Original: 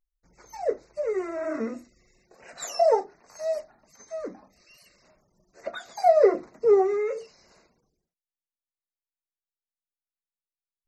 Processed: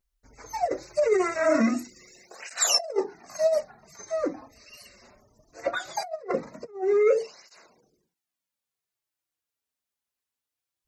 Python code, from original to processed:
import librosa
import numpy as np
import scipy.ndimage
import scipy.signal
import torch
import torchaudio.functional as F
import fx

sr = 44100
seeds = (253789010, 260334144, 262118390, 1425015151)

y = fx.high_shelf(x, sr, hz=2100.0, db=9.5, at=(0.67, 2.94))
y = fx.over_compress(y, sr, threshold_db=-27.0, ratio=-0.5)
y = fx.flanger_cancel(y, sr, hz=0.2, depth_ms=6.6)
y = y * 10.0 ** (6.0 / 20.0)